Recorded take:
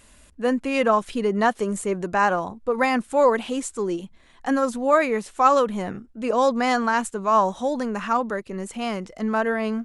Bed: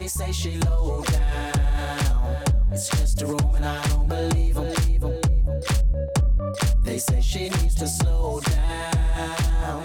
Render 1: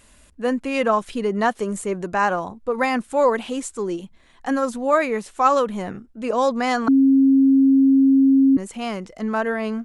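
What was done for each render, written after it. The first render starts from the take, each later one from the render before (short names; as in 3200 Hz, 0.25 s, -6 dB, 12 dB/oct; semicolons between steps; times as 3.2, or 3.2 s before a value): 6.88–8.57 bleep 270 Hz -11 dBFS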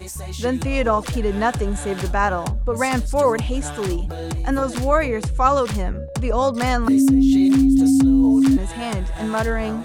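add bed -4.5 dB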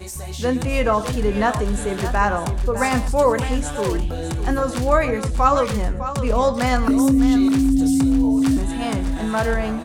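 doubler 24 ms -11.5 dB; tapped delay 0.115/0.606 s -15/-11 dB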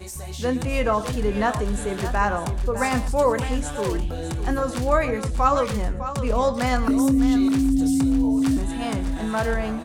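gain -3 dB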